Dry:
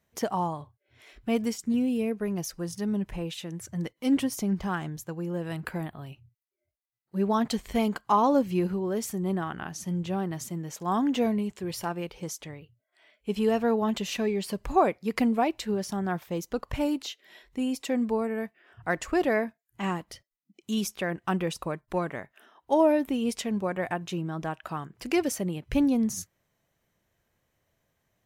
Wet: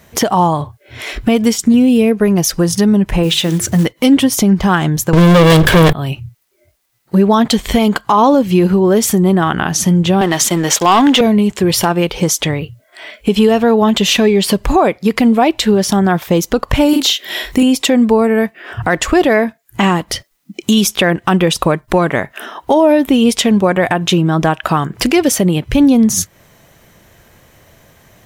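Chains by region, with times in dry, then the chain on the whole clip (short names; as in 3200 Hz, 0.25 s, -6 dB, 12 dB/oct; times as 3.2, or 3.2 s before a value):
3.23–3.86 block floating point 5-bit + notches 50/100/150/200/250/300/350/400/450 Hz
5.13–5.93 minimum comb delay 1.8 ms + notches 50/100/150/200/250/300/350/400/450 Hz + sample leveller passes 5
10.21–11.21 weighting filter A + sample leveller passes 2
16.89–17.63 high shelf 10000 Hz +10.5 dB + doubler 42 ms -4 dB
whole clip: dynamic EQ 3400 Hz, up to +6 dB, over -56 dBFS, Q 3.9; compressor 2.5:1, threshold -42 dBFS; maximiser +29.5 dB; gain -1 dB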